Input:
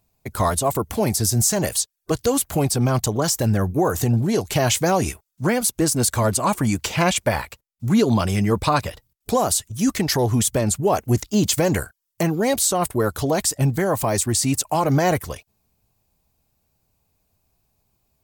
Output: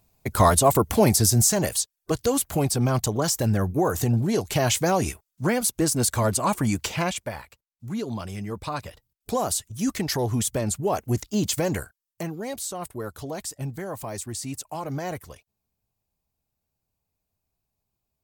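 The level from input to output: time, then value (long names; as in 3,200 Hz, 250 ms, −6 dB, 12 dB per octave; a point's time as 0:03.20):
0:01.02 +3 dB
0:01.74 −3 dB
0:06.85 −3 dB
0:07.34 −13 dB
0:08.57 −13 dB
0:09.40 −5.5 dB
0:11.66 −5.5 dB
0:12.45 −12.5 dB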